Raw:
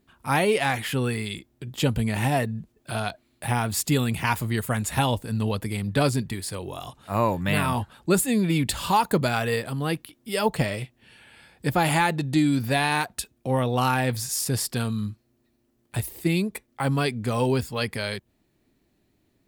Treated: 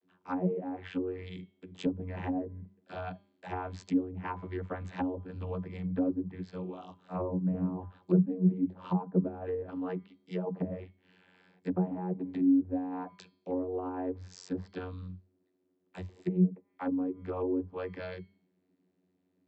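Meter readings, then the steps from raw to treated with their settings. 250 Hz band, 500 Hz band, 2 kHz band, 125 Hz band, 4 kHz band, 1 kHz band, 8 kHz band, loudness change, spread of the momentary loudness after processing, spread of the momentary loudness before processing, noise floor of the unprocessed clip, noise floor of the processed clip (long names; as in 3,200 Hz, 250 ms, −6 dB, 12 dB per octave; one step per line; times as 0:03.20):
−4.0 dB, −9.0 dB, −21.0 dB, −10.5 dB, below −20 dB, −15.5 dB, below −30 dB, −8.5 dB, 15 LU, 10 LU, −69 dBFS, −76 dBFS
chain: channel vocoder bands 32, saw 91.6 Hz
hum removal 200.1 Hz, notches 25
treble cut that deepens with the level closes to 460 Hz, closed at −22 dBFS
level −6 dB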